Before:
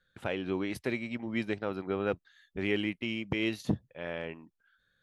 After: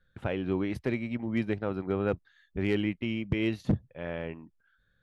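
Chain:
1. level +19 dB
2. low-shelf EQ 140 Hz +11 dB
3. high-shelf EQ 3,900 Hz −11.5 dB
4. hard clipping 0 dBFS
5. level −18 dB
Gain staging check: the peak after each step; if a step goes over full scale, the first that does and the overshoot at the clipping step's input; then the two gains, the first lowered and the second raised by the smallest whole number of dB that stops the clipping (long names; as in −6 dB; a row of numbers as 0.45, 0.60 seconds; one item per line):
+4.5, +7.5, +7.5, 0.0, −18.0 dBFS
step 1, 7.5 dB
step 1 +11 dB, step 5 −10 dB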